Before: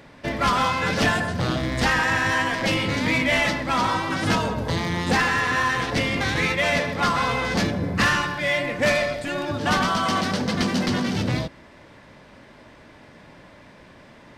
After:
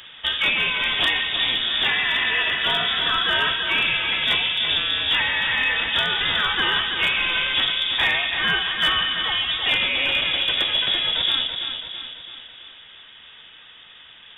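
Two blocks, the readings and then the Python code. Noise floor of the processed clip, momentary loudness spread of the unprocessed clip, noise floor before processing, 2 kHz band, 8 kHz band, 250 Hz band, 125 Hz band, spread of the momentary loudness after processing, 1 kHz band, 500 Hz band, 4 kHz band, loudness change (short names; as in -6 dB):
-46 dBFS, 5 LU, -49 dBFS, +2.5 dB, under -15 dB, -14.5 dB, -14.5 dB, 2 LU, -5.5 dB, -9.5 dB, +11.5 dB, +3.0 dB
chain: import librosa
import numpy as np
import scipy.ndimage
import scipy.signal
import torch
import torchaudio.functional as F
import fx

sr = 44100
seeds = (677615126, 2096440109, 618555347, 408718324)

y = fx.freq_invert(x, sr, carrier_hz=3600)
y = fx.rider(y, sr, range_db=10, speed_s=0.5)
y = fx.echo_feedback(y, sr, ms=332, feedback_pct=52, wet_db=-7)
y = np.clip(10.0 ** (12.0 / 20.0) * y, -1.0, 1.0) / 10.0 ** (12.0 / 20.0)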